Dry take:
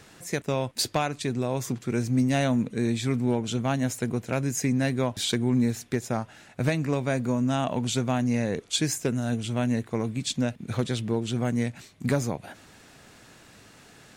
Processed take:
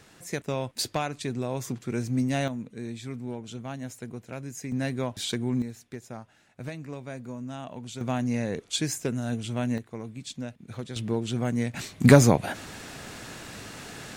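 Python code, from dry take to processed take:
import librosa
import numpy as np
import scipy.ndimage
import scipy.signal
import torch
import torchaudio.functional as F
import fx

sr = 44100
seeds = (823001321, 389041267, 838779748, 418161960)

y = fx.gain(x, sr, db=fx.steps((0.0, -3.0), (2.48, -10.5), (4.72, -4.0), (5.62, -12.0), (8.01, -2.5), (9.78, -9.5), (10.96, -1.0), (11.74, 10.5)))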